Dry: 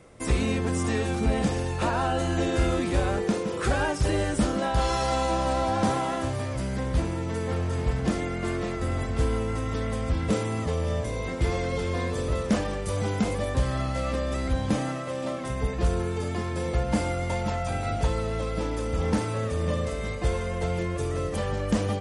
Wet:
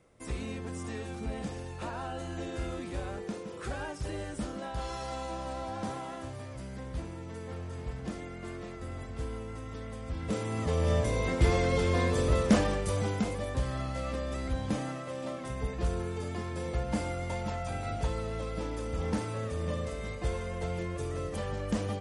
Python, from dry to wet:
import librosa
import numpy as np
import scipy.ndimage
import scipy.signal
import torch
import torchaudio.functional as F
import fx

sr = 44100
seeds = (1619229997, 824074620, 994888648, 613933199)

y = fx.gain(x, sr, db=fx.line((10.02, -12.0), (10.91, 1.0), (12.65, 1.0), (13.34, -6.5)))